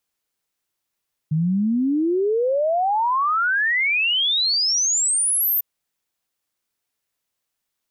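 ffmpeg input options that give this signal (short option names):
-f lavfi -i "aevalsrc='0.141*clip(min(t,4.3-t)/0.01,0,1)*sin(2*PI*150*4.3/log(14000/150)*(exp(log(14000/150)*t/4.3)-1))':d=4.3:s=44100"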